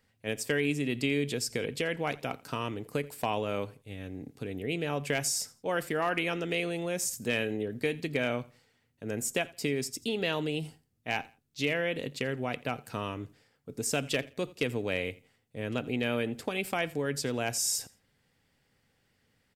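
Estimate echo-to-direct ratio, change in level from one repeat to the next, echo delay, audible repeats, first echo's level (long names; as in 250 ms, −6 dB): −21.0 dB, −12.0 dB, 84 ms, 2, −21.5 dB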